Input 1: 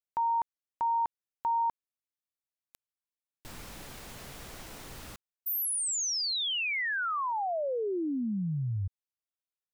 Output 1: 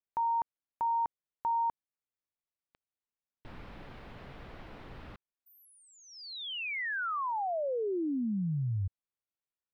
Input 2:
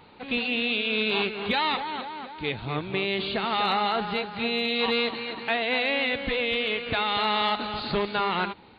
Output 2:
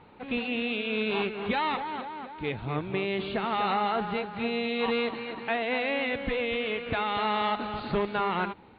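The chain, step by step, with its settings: air absorption 380 m

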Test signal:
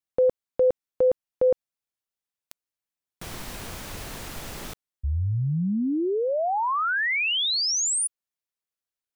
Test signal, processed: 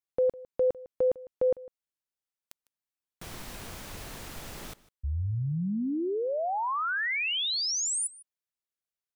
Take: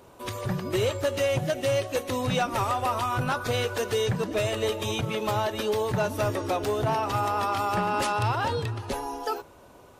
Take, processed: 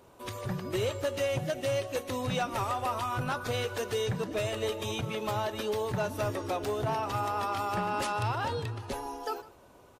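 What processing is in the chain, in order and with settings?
echo 0.153 s -20.5 dB; gain -5 dB

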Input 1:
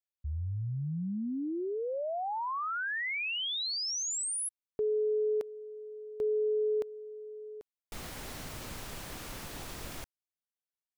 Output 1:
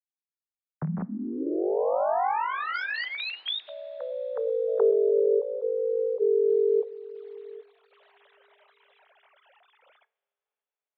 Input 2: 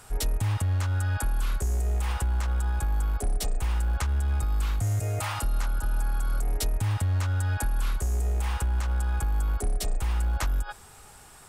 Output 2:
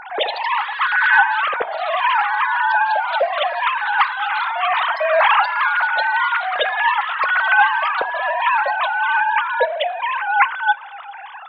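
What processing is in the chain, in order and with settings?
sine-wave speech; echoes that change speed 98 ms, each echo +2 st, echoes 3, each echo -6 dB; two-slope reverb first 0.41 s, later 4.2 s, from -18 dB, DRR 17.5 dB; gain +5.5 dB

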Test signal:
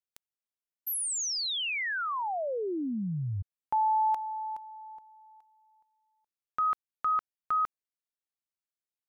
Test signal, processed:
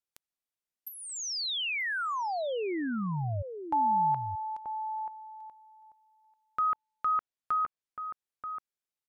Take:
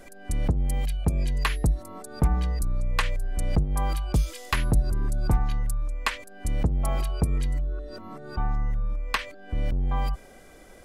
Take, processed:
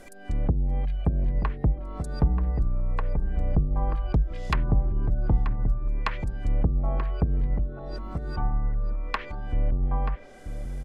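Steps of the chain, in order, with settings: treble ducked by the level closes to 470 Hz, closed at -19 dBFS; outdoor echo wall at 160 m, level -8 dB

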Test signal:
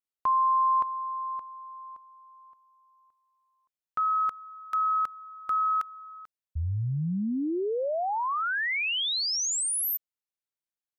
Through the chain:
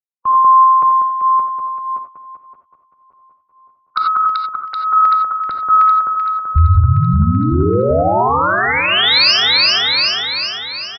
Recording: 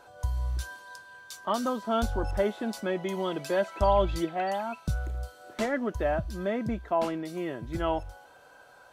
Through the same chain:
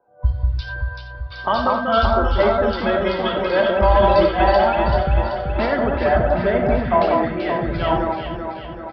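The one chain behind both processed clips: bin magnitudes rounded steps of 15 dB; recorder AGC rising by 8.9 dB/s; low-pass opened by the level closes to 730 Hz, open at -21 dBFS; reverb removal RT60 1.9 s; dynamic EQ 280 Hz, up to -6 dB, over -43 dBFS, Q 1; in parallel at -1.5 dB: compressor, threshold -39 dBFS; on the sum: sine folder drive 6 dB, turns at 0.5 dBFS; on a send: echo with dull and thin repeats by turns 0.192 s, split 1500 Hz, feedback 84%, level -2 dB; on the sum: non-linear reverb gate 0.11 s rising, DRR 5 dB; downsampling 11025 Hz; maximiser +3.5 dB; three-band expander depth 70%; gain -5 dB

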